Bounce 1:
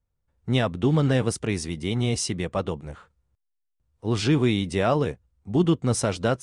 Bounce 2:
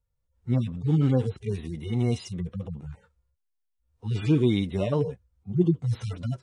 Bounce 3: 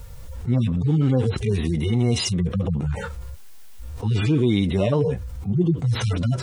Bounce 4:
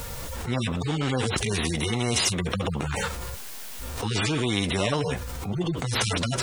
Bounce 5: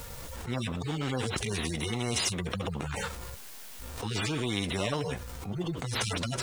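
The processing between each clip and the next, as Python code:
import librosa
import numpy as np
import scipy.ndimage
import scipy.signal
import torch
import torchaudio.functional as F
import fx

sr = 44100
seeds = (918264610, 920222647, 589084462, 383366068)

y1 = fx.hpss_only(x, sr, part='harmonic')
y2 = fx.env_flatten(y1, sr, amount_pct=70)
y3 = fx.spectral_comp(y2, sr, ratio=2.0)
y4 = fx.law_mismatch(y3, sr, coded='A')
y4 = y4 * librosa.db_to_amplitude(-5.0)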